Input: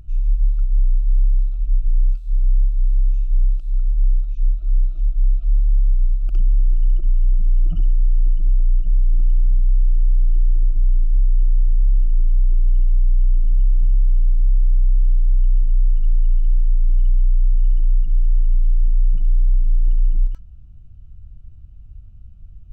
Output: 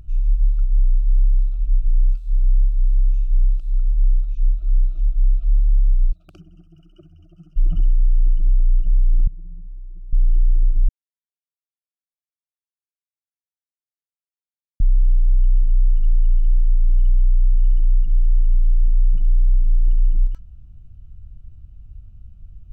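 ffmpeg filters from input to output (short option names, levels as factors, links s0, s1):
-filter_complex "[0:a]asplit=3[s0][s1][s2];[s0]afade=t=out:st=6.11:d=0.02[s3];[s1]highpass=f=96:w=0.5412,highpass=f=96:w=1.3066,afade=t=in:st=6.11:d=0.02,afade=t=out:st=7.56:d=0.02[s4];[s2]afade=t=in:st=7.56:d=0.02[s5];[s3][s4][s5]amix=inputs=3:normalize=0,asettb=1/sr,asplit=3[s6][s7][s8];[s6]atrim=end=9.274[s9];[s7]atrim=start=9.27:end=10.13,asetpts=PTS-STARTPTS,afade=t=in:d=0.004:c=qsin,afade=t=out:st=0.856:d=0.004:c=qsin,bandpass=f=210:t=q:w=1.5[s10];[s8]atrim=start=10.126[s11];[s9][s10]acrossfade=d=0.004:c1=hsin:c2=qsin[s12];[s12][s11]acrossfade=d=0.004:c1=qsin:c2=hsin,asplit=3[s13][s14][s15];[s13]atrim=end=10.89,asetpts=PTS-STARTPTS,afade=t=out:st=10.886:d=0.004:c=hsin[s16];[s14]atrim=start=10.89:end=14.8,asetpts=PTS-STARTPTS,volume=0[s17];[s15]atrim=start=14.8,asetpts=PTS-STARTPTS,afade=t=in:d=0.004:c=hsin[s18];[s16][s17][s18]concat=n=3:v=0:a=1"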